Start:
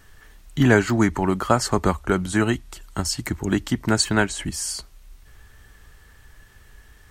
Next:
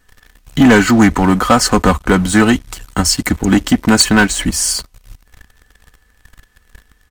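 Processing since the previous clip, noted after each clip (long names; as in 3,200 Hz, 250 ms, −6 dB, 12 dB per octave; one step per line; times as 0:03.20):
comb filter 4 ms, depth 50%
leveller curve on the samples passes 3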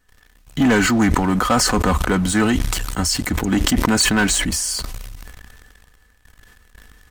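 level that may fall only so fast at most 24 dB per second
level −7.5 dB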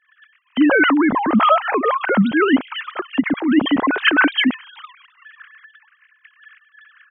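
three sine waves on the formant tracks
level +1 dB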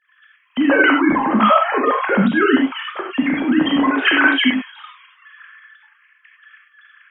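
reverb whose tail is shaped and stops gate 120 ms flat, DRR −0.5 dB
level −2 dB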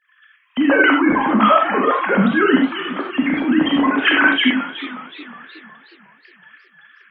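feedback echo with a swinging delay time 366 ms, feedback 47%, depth 146 cents, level −14.5 dB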